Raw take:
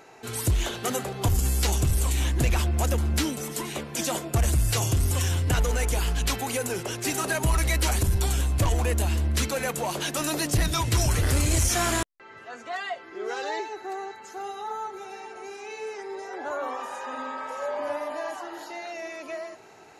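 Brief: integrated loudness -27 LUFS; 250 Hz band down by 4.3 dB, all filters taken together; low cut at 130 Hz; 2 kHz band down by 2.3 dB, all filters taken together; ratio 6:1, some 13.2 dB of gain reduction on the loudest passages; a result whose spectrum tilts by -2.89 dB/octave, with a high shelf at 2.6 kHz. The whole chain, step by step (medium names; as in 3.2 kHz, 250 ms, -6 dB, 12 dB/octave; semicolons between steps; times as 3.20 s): high-pass 130 Hz; peaking EQ 250 Hz -5.5 dB; peaking EQ 2 kHz -5.5 dB; treble shelf 2.6 kHz +5.5 dB; compression 6:1, threshold -35 dBFS; trim +10.5 dB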